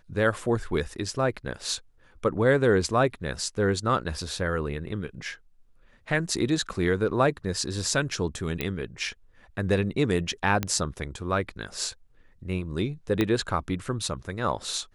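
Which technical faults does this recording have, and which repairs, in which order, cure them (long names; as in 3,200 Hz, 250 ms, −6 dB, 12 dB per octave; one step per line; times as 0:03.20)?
0:08.61: click −13 dBFS
0:10.63: click −11 dBFS
0:13.21: click −11 dBFS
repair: click removal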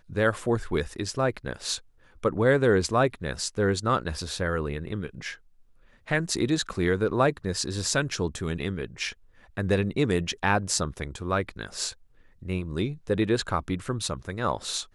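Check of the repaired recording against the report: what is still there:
0:13.21: click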